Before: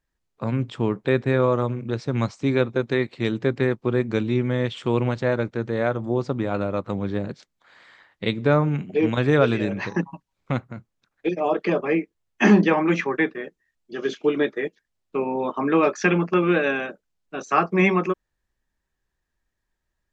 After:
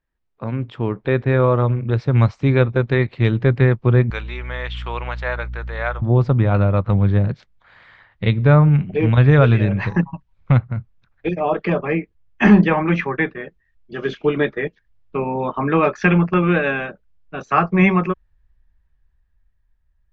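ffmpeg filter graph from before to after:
ffmpeg -i in.wav -filter_complex "[0:a]asettb=1/sr,asplit=3[link_01][link_02][link_03];[link_01]atrim=end=4.104[link_04];[link_02]atrim=start=4.1:end=6.02,asetpts=PTS-STARTPTS,afade=type=in:duration=0.004:curve=qsin,afade=type=out:start_time=1.916:duration=0.004:curve=qsin,highpass=910,aeval=exprs='val(0)+0.00447*(sin(2*PI*60*n/s)+sin(2*PI*2*60*n/s)/2+sin(2*PI*3*60*n/s)/3+sin(2*PI*4*60*n/s)/4+sin(2*PI*5*60*n/s)/5)':channel_layout=same[link_05];[link_03]atrim=start=6.016[link_06];[link_04][link_05]acrossfade=duration=0.004:curve1=hsin:curve2=qsin[link_07];[link_07][link_06]acrossfade=duration=0.004:curve1=qsin:curve2=hsin,lowpass=3000,asubboost=boost=8.5:cutoff=100,dynaudnorm=framelen=140:gausssize=17:maxgain=7dB" out.wav

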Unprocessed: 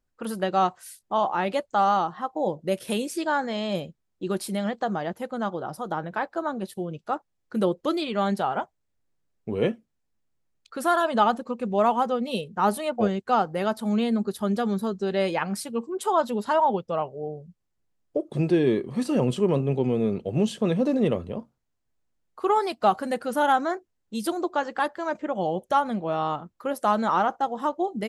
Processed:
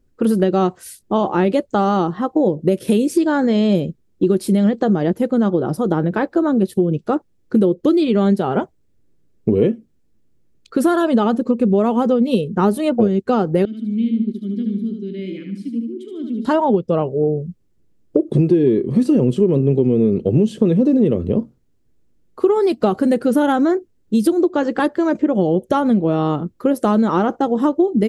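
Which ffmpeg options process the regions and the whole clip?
ffmpeg -i in.wav -filter_complex "[0:a]asettb=1/sr,asplit=3[link_01][link_02][link_03];[link_01]atrim=end=13.654[link_04];[link_02]atrim=start=13.65:end=16.45,asetpts=PTS-STARTPTS,afade=type=in:duration=0.004:curve=qsin,afade=type=out:start_time=2.796:duration=0.004:curve=qsin,asplit=3[link_05][link_06][link_07];[link_05]bandpass=frequency=270:width_type=q:width=8,volume=0dB[link_08];[link_06]bandpass=frequency=2290:width_type=q:width=8,volume=-6dB[link_09];[link_07]bandpass=frequency=3010:width_type=q:width=8,volume=-9dB[link_10];[link_08][link_09][link_10]amix=inputs=3:normalize=0,equalizer=frequency=940:width=0.41:gain=-10.5,aecho=1:1:74|148|222|296|370:0.562|0.225|0.09|0.036|0.0144,atrim=end_sample=123480[link_11];[link_03]atrim=start=16.446[link_12];[link_04][link_11]acrossfade=duration=0.004:curve1=hsin:curve2=qsin[link_13];[link_13][link_12]acrossfade=duration=0.004:curve1=qsin:curve2=hsin,lowshelf=frequency=550:width_type=q:width=1.5:gain=10.5,acompressor=threshold=-19dB:ratio=6,volume=7dB" out.wav

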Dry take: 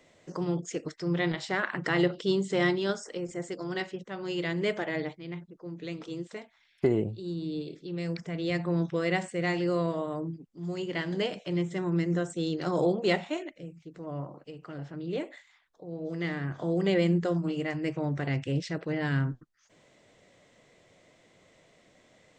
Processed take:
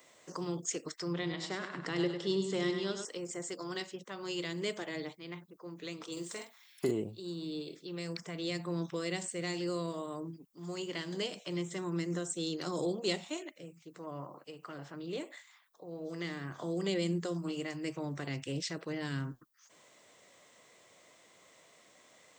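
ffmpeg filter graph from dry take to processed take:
ffmpeg -i in.wav -filter_complex "[0:a]asettb=1/sr,asplit=3[link_01][link_02][link_03];[link_01]atrim=end=1.134[link_04];[link_02]atrim=start=1.13:end=3.05,asetpts=PTS-STARTPTS,afade=type=in:duration=0.004:curve=qsin,afade=type=out:start_time=1.916:duration=0.004:curve=qsin,aemphasis=mode=reproduction:type=50fm,aecho=1:1:100|200|300|400:0.422|0.16|0.0609|0.0231,atrim=end_sample=84672[link_05];[link_03]atrim=start=3.046[link_06];[link_04][link_05]acrossfade=duration=0.004:curve1=hsin:curve2=qsin[link_07];[link_07][link_06]acrossfade=duration=0.004:curve1=qsin:curve2=hsin,asettb=1/sr,asplit=3[link_08][link_09][link_10];[link_08]atrim=end=6.124[link_11];[link_09]atrim=start=6.12:end=6.91,asetpts=PTS-STARTPTS,afade=type=in:duration=0.004:curve=qsin,afade=type=out:start_time=0.786:duration=0.004:curve=qsin,highshelf=frequency=6000:gain=11.5,asplit=2[link_12][link_13];[link_13]adelay=47,volume=-6dB[link_14];[link_12][link_14]amix=inputs=2:normalize=0,atrim=end_sample=34839[link_15];[link_10]atrim=start=6.906[link_16];[link_11][link_15]acrossfade=duration=0.004:curve1=hsin:curve2=qsin[link_17];[link_17][link_16]acrossfade=duration=0.004:curve1=qsin:curve2=hsin,aemphasis=mode=production:type=bsi,acrossover=split=440|3000[link_18][link_19][link_20];[link_19]acompressor=threshold=-44dB:ratio=6[link_21];[link_18][link_21][link_20]amix=inputs=3:normalize=0,equalizer=frequency=1100:width_type=o:width=0.59:gain=7,volume=-2dB" out.wav

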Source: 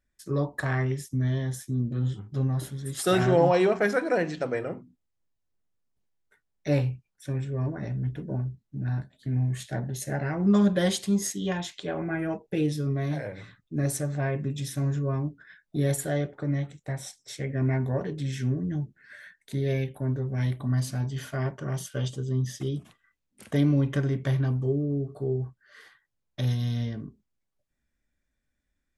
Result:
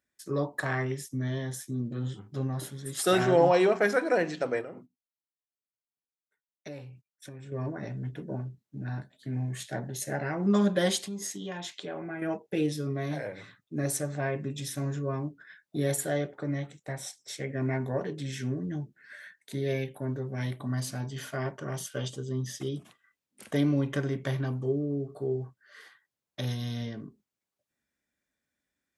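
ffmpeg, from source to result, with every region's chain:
ffmpeg -i in.wav -filter_complex "[0:a]asettb=1/sr,asplit=3[link_01][link_02][link_03];[link_01]atrim=end=4.614[link_04];[link_02]atrim=start=4.61:end=7.52,asetpts=PTS-STARTPTS,afade=type=in:duration=0.004:curve=qsin,afade=type=out:start_time=2.906:duration=0.004:curve=qsin,agate=range=-17dB:threshold=-52dB:ratio=16:release=100:detection=peak,acompressor=threshold=-36dB:ratio=10:attack=3.2:release=140:knee=1:detection=peak[link_05];[link_03]atrim=start=7.516[link_06];[link_04][link_05]acrossfade=duration=0.004:curve1=hsin:curve2=qsin[link_07];[link_07][link_06]acrossfade=duration=0.004:curve1=qsin:curve2=hsin,asettb=1/sr,asplit=3[link_08][link_09][link_10];[link_08]atrim=end=11.034[link_11];[link_09]atrim=start=11.03:end=12.22,asetpts=PTS-STARTPTS,afade=type=in:duration=0.004:curve=qsin,afade=type=out:start_time=1.186:duration=0.004:curve=qsin,highshelf=frequency=8300:gain=-5,acompressor=threshold=-33dB:ratio=3:attack=3.2:release=140:knee=1:detection=peak[link_12];[link_10]atrim=start=12.216[link_13];[link_11][link_12]acrossfade=duration=0.004:curve1=hsin:curve2=qsin[link_14];[link_14][link_13]acrossfade=duration=0.004:curve1=qsin:curve2=hsin,highpass=110,bass=frequency=250:gain=-5,treble=frequency=4000:gain=1" out.wav

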